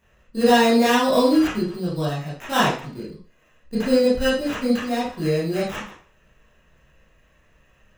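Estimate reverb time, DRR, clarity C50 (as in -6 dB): 0.40 s, -9.0 dB, 3.0 dB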